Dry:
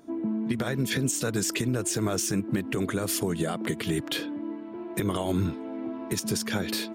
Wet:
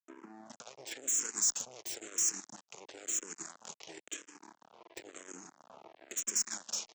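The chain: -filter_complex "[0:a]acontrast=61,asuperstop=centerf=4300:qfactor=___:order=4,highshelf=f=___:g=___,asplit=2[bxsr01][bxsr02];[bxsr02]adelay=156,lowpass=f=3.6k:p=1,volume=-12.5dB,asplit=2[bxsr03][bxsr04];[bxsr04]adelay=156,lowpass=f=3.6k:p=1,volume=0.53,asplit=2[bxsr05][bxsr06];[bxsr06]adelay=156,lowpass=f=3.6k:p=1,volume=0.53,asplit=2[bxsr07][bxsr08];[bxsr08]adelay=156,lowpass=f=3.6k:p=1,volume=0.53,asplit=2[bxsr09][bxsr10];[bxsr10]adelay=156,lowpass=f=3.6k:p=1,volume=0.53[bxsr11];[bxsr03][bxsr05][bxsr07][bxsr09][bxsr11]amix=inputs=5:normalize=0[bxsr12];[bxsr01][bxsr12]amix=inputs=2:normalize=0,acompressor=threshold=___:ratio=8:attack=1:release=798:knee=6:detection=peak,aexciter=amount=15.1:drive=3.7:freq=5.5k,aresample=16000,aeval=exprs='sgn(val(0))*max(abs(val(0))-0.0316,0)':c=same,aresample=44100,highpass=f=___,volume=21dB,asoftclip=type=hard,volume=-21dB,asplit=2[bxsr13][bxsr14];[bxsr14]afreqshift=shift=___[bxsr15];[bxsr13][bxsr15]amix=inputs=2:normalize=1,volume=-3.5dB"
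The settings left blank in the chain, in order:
2.1, 2.3k, 3, -26dB, 340, -0.98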